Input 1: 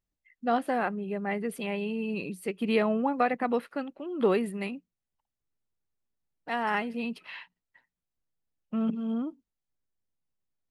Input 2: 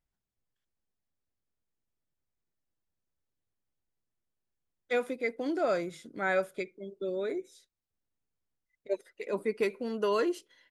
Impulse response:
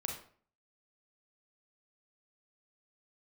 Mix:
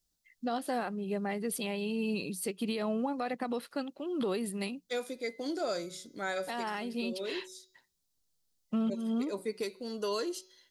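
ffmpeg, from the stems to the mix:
-filter_complex "[0:a]alimiter=limit=0.106:level=0:latency=1:release=61,volume=1.12[s0];[1:a]bandreject=f=186.3:t=h:w=4,bandreject=f=372.6:t=h:w=4,bandreject=f=558.9:t=h:w=4,bandreject=f=745.2:t=h:w=4,bandreject=f=931.5:t=h:w=4,bandreject=f=1117.8:t=h:w=4,bandreject=f=1304.1:t=h:w=4,bandreject=f=1490.4:t=h:w=4,bandreject=f=1676.7:t=h:w=4,bandreject=f=1863:t=h:w=4,bandreject=f=2049.3:t=h:w=4,bandreject=f=2235.6:t=h:w=4,bandreject=f=2421.9:t=h:w=4,bandreject=f=2608.2:t=h:w=4,bandreject=f=2794.5:t=h:w=4,bandreject=f=2980.8:t=h:w=4,bandreject=f=3167.1:t=h:w=4,bandreject=f=3353.4:t=h:w=4,bandreject=f=3539.7:t=h:w=4,bandreject=f=3726:t=h:w=4,bandreject=f=3912.3:t=h:w=4,bandreject=f=4098.6:t=h:w=4,bandreject=f=4284.9:t=h:w=4,bandreject=f=4471.2:t=h:w=4,bandreject=f=4657.5:t=h:w=4,bandreject=f=4843.8:t=h:w=4,bandreject=f=5030.1:t=h:w=4,bandreject=f=5216.4:t=h:w=4,bandreject=f=5402.7:t=h:w=4,bandreject=f=5589:t=h:w=4,bandreject=f=5775.3:t=h:w=4,bandreject=f=5961.6:t=h:w=4,bandreject=f=6147.9:t=h:w=4,bandreject=f=6334.2:t=h:w=4,bandreject=f=6520.5:t=h:w=4,bandreject=f=6706.8:t=h:w=4,bandreject=f=6893.1:t=h:w=4,volume=0.708[s1];[s0][s1]amix=inputs=2:normalize=0,highshelf=f=3200:t=q:w=1.5:g=10,alimiter=level_in=1.06:limit=0.0631:level=0:latency=1:release=426,volume=0.944"

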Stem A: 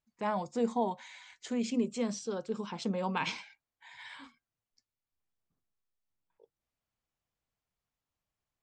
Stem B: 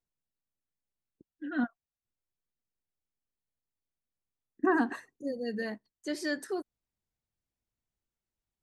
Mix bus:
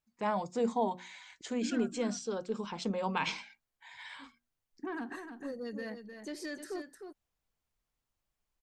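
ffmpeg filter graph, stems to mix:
-filter_complex "[0:a]bandreject=f=60:t=h:w=6,bandreject=f=120:t=h:w=6,bandreject=f=180:t=h:w=6,bandreject=f=240:t=h:w=6,bandreject=f=300:t=h:w=6,bandreject=f=360:t=h:w=6,asubboost=boost=3.5:cutoff=54,volume=1.06[s0];[1:a]alimiter=level_in=1.33:limit=0.0631:level=0:latency=1:release=153,volume=0.75,asoftclip=type=tanh:threshold=0.0376,adelay=200,volume=0.708,asplit=2[s1][s2];[s2]volume=0.398,aecho=0:1:306:1[s3];[s0][s1][s3]amix=inputs=3:normalize=0"

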